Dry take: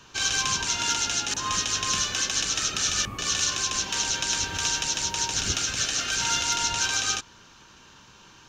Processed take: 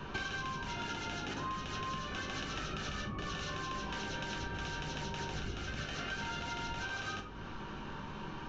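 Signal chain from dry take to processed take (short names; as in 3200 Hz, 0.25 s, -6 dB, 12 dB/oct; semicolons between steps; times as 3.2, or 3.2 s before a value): tape spacing loss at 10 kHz 39 dB; shoebox room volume 290 m³, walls furnished, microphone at 1.1 m; compressor 16:1, threshold -47 dBFS, peak gain reduction 21 dB; gain +11 dB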